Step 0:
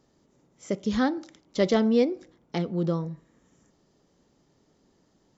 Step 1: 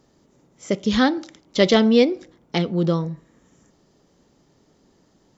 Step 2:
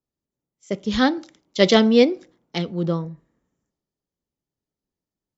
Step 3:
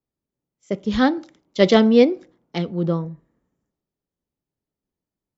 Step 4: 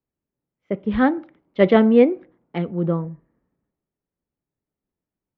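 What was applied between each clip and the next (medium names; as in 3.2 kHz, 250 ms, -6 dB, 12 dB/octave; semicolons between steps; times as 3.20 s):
dynamic bell 3.2 kHz, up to +8 dB, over -49 dBFS, Q 0.97; trim +6 dB
three bands expanded up and down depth 70%; trim -3.5 dB
treble shelf 2.7 kHz -8.5 dB; trim +1.5 dB
low-pass 2.5 kHz 24 dB/octave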